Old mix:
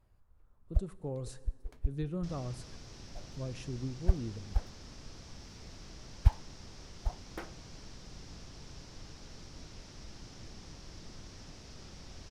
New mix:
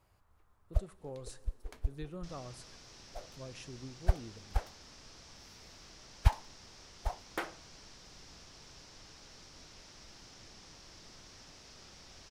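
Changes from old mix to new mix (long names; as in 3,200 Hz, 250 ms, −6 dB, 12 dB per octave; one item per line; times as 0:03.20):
first sound +9.5 dB
master: add low-shelf EQ 380 Hz −11.5 dB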